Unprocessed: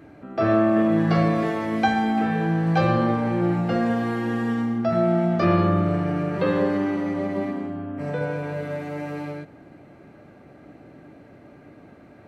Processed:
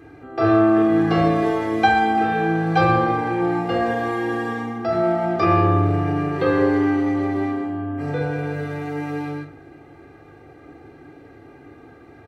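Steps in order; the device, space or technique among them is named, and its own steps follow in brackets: microphone above a desk (comb 2.5 ms, depth 77%; reverberation RT60 0.40 s, pre-delay 25 ms, DRR 5.5 dB)

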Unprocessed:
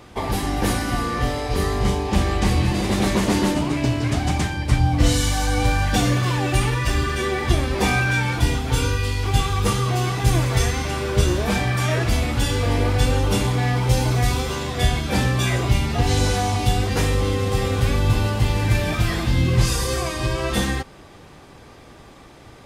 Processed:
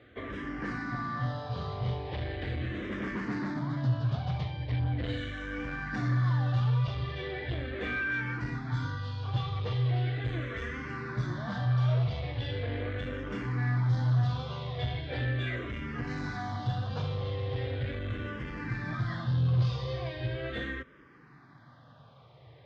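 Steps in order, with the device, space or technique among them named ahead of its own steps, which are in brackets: barber-pole phaser into a guitar amplifier (barber-pole phaser -0.39 Hz; saturation -18 dBFS, distortion -14 dB; cabinet simulation 95–3700 Hz, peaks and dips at 130 Hz +9 dB, 190 Hz -6 dB, 370 Hz -5 dB, 840 Hz -6 dB, 1.7 kHz +4 dB, 2.6 kHz -7 dB); trim -7 dB

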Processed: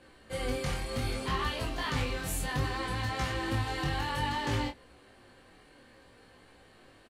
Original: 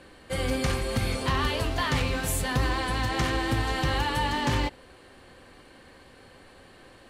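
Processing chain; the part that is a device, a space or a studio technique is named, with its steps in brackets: double-tracked vocal (doubling 28 ms -5 dB; chorus 0.63 Hz, delay 16.5 ms, depth 5.1 ms); trim -4 dB

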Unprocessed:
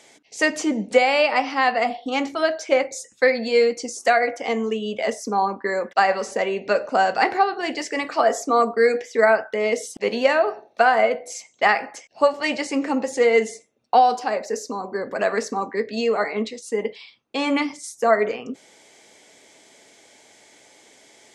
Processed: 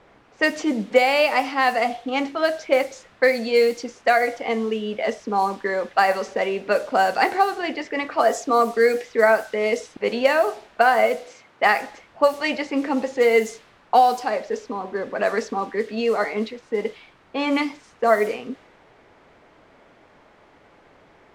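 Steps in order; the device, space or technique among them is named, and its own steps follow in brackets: cassette deck with a dynamic noise filter (white noise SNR 22 dB; level-controlled noise filter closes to 1.2 kHz, open at -14 dBFS); 11.26–11.76 s: high-pass 110 Hz

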